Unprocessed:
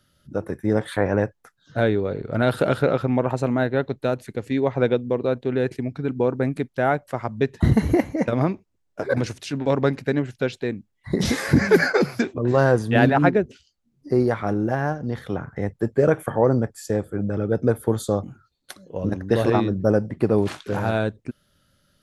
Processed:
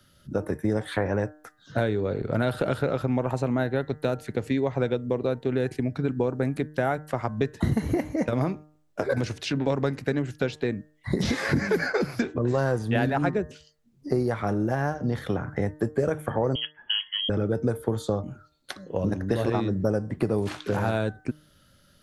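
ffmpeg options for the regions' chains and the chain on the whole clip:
ffmpeg -i in.wav -filter_complex "[0:a]asettb=1/sr,asplit=3[link_01][link_02][link_03];[link_01]atrim=end=16.554[link_04];[link_02]atrim=start=16.55:end=17.29,asetpts=PTS-STARTPTS,afade=type=in:duration=0.004:curve=qsin,afade=type=out:start_time=0.736:duration=0.004:curve=qsin,lowshelf=frequency=370:gain=-10.5,lowpass=frequency=2900:width_type=q:width=0.5098,lowpass=frequency=2900:width_type=q:width=0.6013,lowpass=frequency=2900:width_type=q:width=0.9,lowpass=frequency=2900:width_type=q:width=2.563,afreqshift=-3400[link_05];[link_03]atrim=start=17.286[link_06];[link_04][link_05]acrossfade=duration=0.004:curve1=hsin:curve2=qsin[link_07];[link_07][link_06]acrossfade=duration=0.004:curve1=qsin:curve2=hsin,acrossover=split=88|5800[link_08][link_09][link_10];[link_08]acompressor=threshold=-42dB:ratio=4[link_11];[link_09]acompressor=threshold=-28dB:ratio=4[link_12];[link_10]acompressor=threshold=-57dB:ratio=4[link_13];[link_11][link_12][link_13]amix=inputs=3:normalize=0,bandreject=frequency=152.2:width_type=h:width=4,bandreject=frequency=304.4:width_type=h:width=4,bandreject=frequency=456.6:width_type=h:width=4,bandreject=frequency=608.8:width_type=h:width=4,bandreject=frequency=761:width_type=h:width=4,bandreject=frequency=913.2:width_type=h:width=4,bandreject=frequency=1065.4:width_type=h:width=4,bandreject=frequency=1217.6:width_type=h:width=4,bandreject=frequency=1369.8:width_type=h:width=4,bandreject=frequency=1522:width_type=h:width=4,bandreject=frequency=1674.2:width_type=h:width=4,bandreject=frequency=1826.4:width_type=h:width=4,bandreject=frequency=1978.6:width_type=h:width=4,volume=4.5dB" out.wav

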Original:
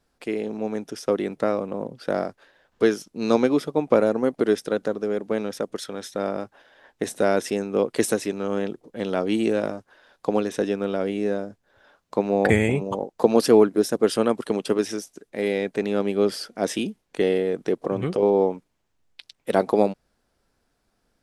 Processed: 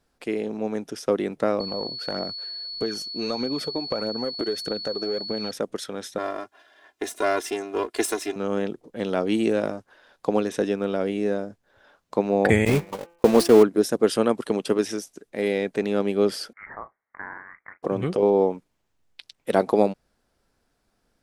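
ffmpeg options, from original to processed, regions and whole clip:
ffmpeg -i in.wav -filter_complex "[0:a]asettb=1/sr,asplit=3[link_01][link_02][link_03];[link_01]atrim=end=1.604[link_04];[link_02]atrim=start=1.6:end=5.51,asetpts=PTS-STARTPTS,afade=type=in:duration=0.004:curve=qsin,afade=type=out:start_time=3.906:duration=0.004:curve=qsin,aphaser=in_gain=1:out_gain=1:delay=3.2:decay=0.5:speed=1.6:type=triangular,acompressor=threshold=-24dB:ratio=5:attack=3.2:release=140:knee=1:detection=peak,aeval=exprs='val(0)+0.0251*sin(2*PI*4400*n/s)':channel_layout=same[link_05];[link_03]atrim=start=5.506[link_06];[link_04][link_05]acrossfade=duration=0.004:curve1=hsin:curve2=qsin[link_07];[link_07][link_06]acrossfade=duration=0.004:curve1=qsin:curve2=hsin,asettb=1/sr,asplit=3[link_08][link_09][link_10];[link_08]atrim=end=6.184[link_11];[link_09]atrim=start=6.18:end=8.36,asetpts=PTS-STARTPTS,afade=type=in:duration=0.004:curve=qsin,afade=type=out:start_time=2.176:duration=0.004:curve=qsin,aeval=exprs='if(lt(val(0),0),0.447*val(0),val(0))':channel_layout=same,highpass=frequency=410:poles=1,aecho=1:1:2.9:0.87,atrim=end_sample=96138[link_12];[link_10]atrim=start=8.356[link_13];[link_11][link_12]acrossfade=duration=0.004:curve1=hsin:curve2=qsin[link_14];[link_14][link_13]acrossfade=duration=0.004:curve1=qsin:curve2=hsin,asettb=1/sr,asplit=3[link_15][link_16][link_17];[link_15]atrim=end=12.654[link_18];[link_16]atrim=start=12.65:end=13.63,asetpts=PTS-STARTPTS,afade=type=in:duration=0.004:curve=qsin,afade=type=out:start_time=0.976:duration=0.004:curve=qsin,aeval=exprs='val(0)+0.5*0.0794*sgn(val(0))':channel_layout=same,agate=range=-42dB:threshold=-21dB:ratio=16:release=100:detection=peak,bandreject=frequency=170.5:width_type=h:width=4,bandreject=frequency=341:width_type=h:width=4,bandreject=frequency=511.5:width_type=h:width=4,bandreject=frequency=682:width_type=h:width=4,bandreject=frequency=852.5:width_type=h:width=4,bandreject=frequency=1023:width_type=h:width=4,bandreject=frequency=1193.5:width_type=h:width=4,bandreject=frequency=1364:width_type=h:width=4,bandreject=frequency=1534.5:width_type=h:width=4,bandreject=frequency=1705:width_type=h:width=4,bandreject=frequency=1875.5:width_type=h:width=4,bandreject=frequency=2046:width_type=h:width=4,bandreject=frequency=2216.5:width_type=h:width=4,bandreject=frequency=2387:width_type=h:width=4,bandreject=frequency=2557.5:width_type=h:width=4,bandreject=frequency=2728:width_type=h:width=4,bandreject=frequency=2898.5:width_type=h:width=4,bandreject=frequency=3069:width_type=h:width=4[link_19];[link_17]atrim=start=13.626[link_20];[link_18][link_19]acrossfade=duration=0.004:curve1=hsin:curve2=qsin[link_21];[link_21][link_20]acrossfade=duration=0.004:curve1=qsin:curve2=hsin,asettb=1/sr,asplit=3[link_22][link_23][link_24];[link_22]atrim=end=16.534[link_25];[link_23]atrim=start=16.53:end=17.83,asetpts=PTS-STARTPTS,afade=type=in:duration=0.004:curve=qsin,afade=type=out:start_time=1.296:duration=0.004:curve=qsin,asuperpass=centerf=2600:order=12:qfactor=0.84,asplit=2[link_26][link_27];[link_27]adelay=36,volume=-12dB[link_28];[link_26][link_28]amix=inputs=2:normalize=0,atrim=end_sample=57330,lowpass=frequency=3100:width_type=q:width=0.5098,lowpass=frequency=3100:width_type=q:width=0.6013,lowpass=frequency=3100:width_type=q:width=0.9,lowpass=frequency=3100:width_type=q:width=2.563,afreqshift=-3600[link_29];[link_24]atrim=start=17.826[link_30];[link_25][link_29]acrossfade=duration=0.004:curve1=hsin:curve2=qsin[link_31];[link_31][link_30]acrossfade=duration=0.004:curve1=qsin:curve2=hsin" out.wav

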